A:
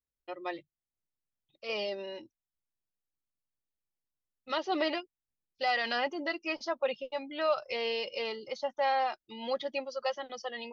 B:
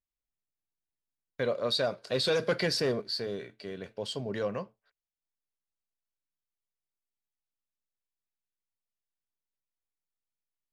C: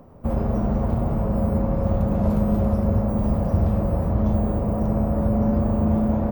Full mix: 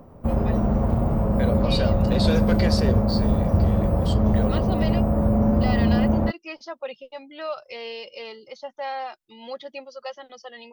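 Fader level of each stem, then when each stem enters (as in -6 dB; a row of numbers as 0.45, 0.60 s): -2.0, +0.5, +1.0 dB; 0.00, 0.00, 0.00 s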